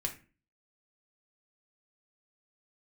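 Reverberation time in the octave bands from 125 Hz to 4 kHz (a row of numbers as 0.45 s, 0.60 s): 0.50 s, 0.50 s, 0.40 s, 0.30 s, 0.35 s, 0.25 s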